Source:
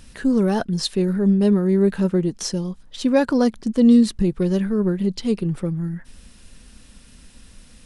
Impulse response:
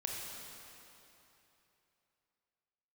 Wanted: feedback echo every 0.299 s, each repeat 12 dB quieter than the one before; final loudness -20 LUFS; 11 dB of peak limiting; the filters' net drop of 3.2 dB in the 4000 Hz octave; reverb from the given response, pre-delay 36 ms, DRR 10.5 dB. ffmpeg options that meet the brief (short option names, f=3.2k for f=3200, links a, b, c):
-filter_complex "[0:a]equalizer=f=4k:t=o:g=-4,alimiter=limit=-17dB:level=0:latency=1,aecho=1:1:299|598|897:0.251|0.0628|0.0157,asplit=2[a][b];[1:a]atrim=start_sample=2205,adelay=36[c];[b][c]afir=irnorm=-1:irlink=0,volume=-12dB[d];[a][d]amix=inputs=2:normalize=0,volume=5dB"